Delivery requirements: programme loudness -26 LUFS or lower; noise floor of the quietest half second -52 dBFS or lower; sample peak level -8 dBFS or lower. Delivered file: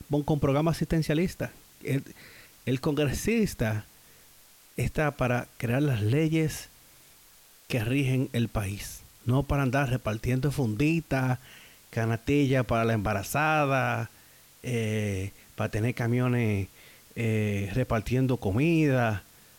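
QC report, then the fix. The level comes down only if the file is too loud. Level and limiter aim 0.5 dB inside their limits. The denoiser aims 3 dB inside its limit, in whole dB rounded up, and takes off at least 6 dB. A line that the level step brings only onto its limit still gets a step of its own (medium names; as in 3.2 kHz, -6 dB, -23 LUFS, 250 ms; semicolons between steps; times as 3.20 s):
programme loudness -28.0 LUFS: pass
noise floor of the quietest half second -56 dBFS: pass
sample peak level -14.0 dBFS: pass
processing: none needed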